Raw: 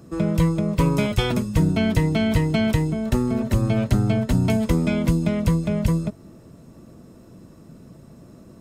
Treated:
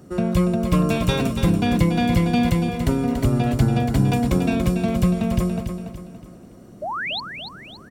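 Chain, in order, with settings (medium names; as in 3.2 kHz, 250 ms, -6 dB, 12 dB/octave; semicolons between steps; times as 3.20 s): painted sound rise, 7.42–7.84 s, 510–4200 Hz -27 dBFS; speed mistake 44.1 kHz file played as 48 kHz; feedback delay 285 ms, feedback 41%, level -7.5 dB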